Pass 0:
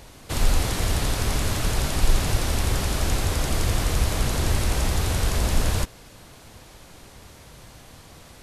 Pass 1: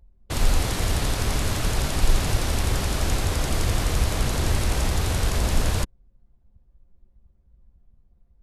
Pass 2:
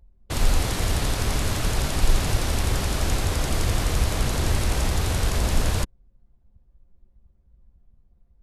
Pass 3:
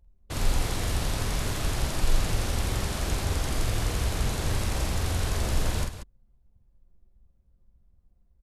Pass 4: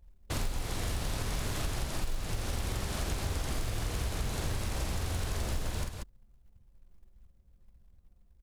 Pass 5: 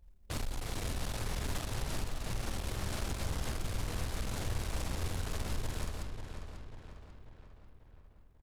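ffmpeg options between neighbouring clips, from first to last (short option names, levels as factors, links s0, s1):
-af "anlmdn=25.1"
-af anull
-af "aecho=1:1:46|187:0.596|0.299,volume=0.501"
-af "acompressor=threshold=0.0282:ratio=6,acrusher=bits=7:mode=log:mix=0:aa=0.000001,volume=1.19"
-filter_complex "[0:a]aeval=exprs='(tanh(35.5*val(0)+0.5)-tanh(0.5))/35.5':c=same,asplit=2[s0][s1];[s1]adelay=542,lowpass=f=4000:p=1,volume=0.447,asplit=2[s2][s3];[s3]adelay=542,lowpass=f=4000:p=1,volume=0.54,asplit=2[s4][s5];[s5]adelay=542,lowpass=f=4000:p=1,volume=0.54,asplit=2[s6][s7];[s7]adelay=542,lowpass=f=4000:p=1,volume=0.54,asplit=2[s8][s9];[s9]adelay=542,lowpass=f=4000:p=1,volume=0.54,asplit=2[s10][s11];[s11]adelay=542,lowpass=f=4000:p=1,volume=0.54,asplit=2[s12][s13];[s13]adelay=542,lowpass=f=4000:p=1,volume=0.54[s14];[s2][s4][s6][s8][s10][s12][s14]amix=inputs=7:normalize=0[s15];[s0][s15]amix=inputs=2:normalize=0"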